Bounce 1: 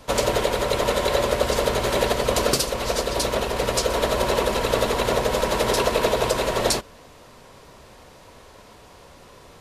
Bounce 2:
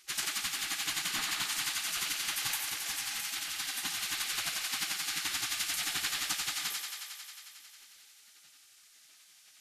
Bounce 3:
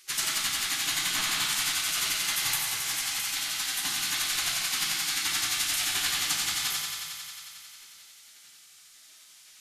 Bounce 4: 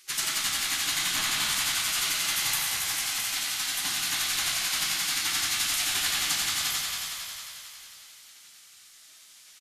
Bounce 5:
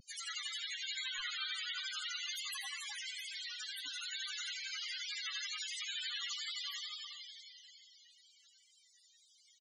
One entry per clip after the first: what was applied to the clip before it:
gate on every frequency bin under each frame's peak −20 dB weak; on a send: feedback echo with a high-pass in the loop 90 ms, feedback 83%, high-pass 310 Hz, level −6.5 dB; on the sum: level −3 dB
high-shelf EQ 5,000 Hz +4.5 dB; convolution reverb RT60 1.0 s, pre-delay 7 ms, DRR 0 dB; level +1.5 dB
echo with shifted repeats 283 ms, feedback 41%, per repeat −59 Hz, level −7 dB
far-end echo of a speakerphone 170 ms, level −7 dB; pitch vibrato 2.2 Hz 64 cents; spectral peaks only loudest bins 16; level −5 dB

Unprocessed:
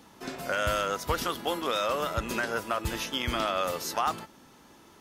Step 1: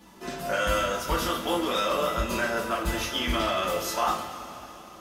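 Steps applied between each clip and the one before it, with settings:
coupled-rooms reverb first 0.32 s, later 3.7 s, from −18 dB, DRR −5 dB
level −3.5 dB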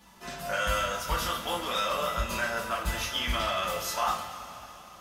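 parametric band 330 Hz −12 dB 1.1 octaves
level −1 dB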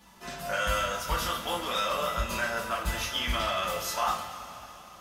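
no processing that can be heard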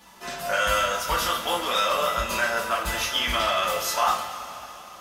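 bass and treble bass −8 dB, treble 0 dB
level +6 dB

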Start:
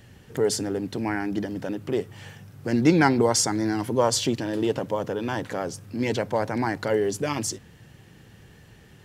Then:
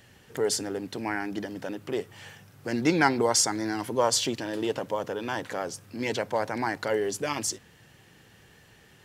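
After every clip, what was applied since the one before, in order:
low-shelf EQ 340 Hz −10 dB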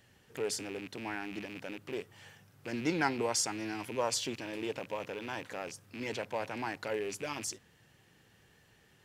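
loose part that buzzes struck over −43 dBFS, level −26 dBFS
level −8.5 dB

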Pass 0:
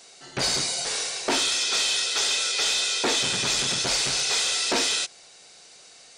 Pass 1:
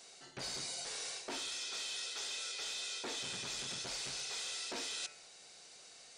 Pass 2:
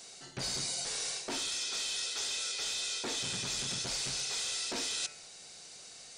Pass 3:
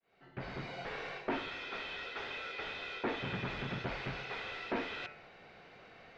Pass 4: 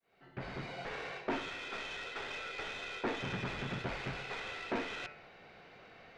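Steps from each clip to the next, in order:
hum removal 147.8 Hz, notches 19; reversed playback; downward compressor 6 to 1, threshold −33 dBFS, peak gain reduction 11.5 dB; reversed playback; level −7 dB
bass and treble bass +7 dB, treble +4 dB; level +3.5 dB
fade in at the beginning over 0.81 s; low-pass filter 2,300 Hz 24 dB per octave; level +5 dB
stylus tracing distortion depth 0.038 ms

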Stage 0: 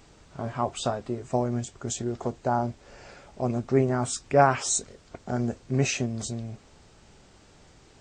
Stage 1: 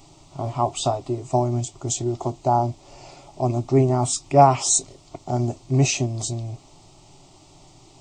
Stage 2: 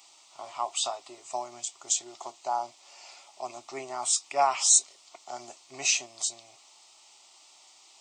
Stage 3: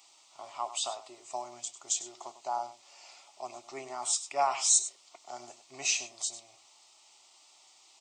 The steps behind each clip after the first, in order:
phaser with its sweep stopped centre 320 Hz, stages 8; level +7.5 dB
high-pass filter 1,300 Hz 12 dB per octave
single-tap delay 99 ms −13.5 dB; level −4 dB

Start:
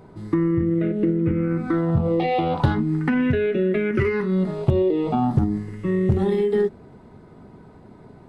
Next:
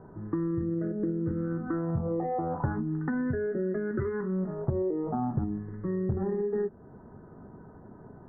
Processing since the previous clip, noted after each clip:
downward compressor 1.5 to 1, threshold −35 dBFS, peak gain reduction 8 dB
Butterworth low-pass 1,800 Hz 96 dB per octave
level −3 dB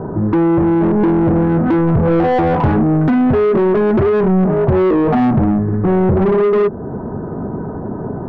spectral tilt −4 dB per octave
mid-hump overdrive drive 34 dB, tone 1,100 Hz, clips at −5 dBFS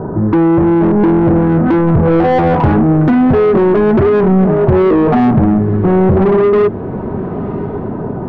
tape wow and flutter 20 cents
feedback delay with all-pass diffusion 1,051 ms, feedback 45%, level −16 dB
level +3 dB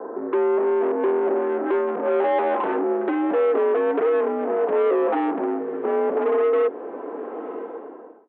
fade-out on the ending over 0.74 s
single-sideband voice off tune +58 Hz 270–3,300 Hz
level −9 dB

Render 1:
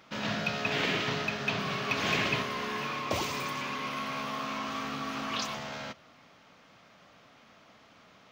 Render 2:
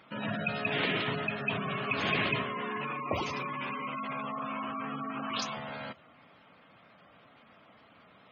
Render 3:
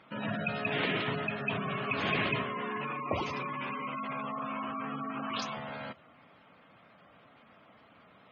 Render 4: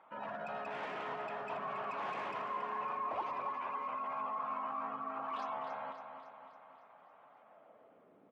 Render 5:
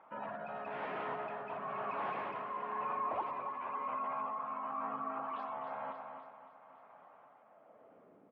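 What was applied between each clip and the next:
gate on every frequency bin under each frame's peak −15 dB strong
high-shelf EQ 6,000 Hz −11 dB
gain into a clipping stage and back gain 32 dB; band-pass filter sweep 870 Hz → 320 Hz, 0:07.30–0:08.25; repeating echo 278 ms, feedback 56%, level −8.5 dB; level +3 dB
amplitude tremolo 1 Hz, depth 35%; high-frequency loss of the air 340 metres; level +3.5 dB

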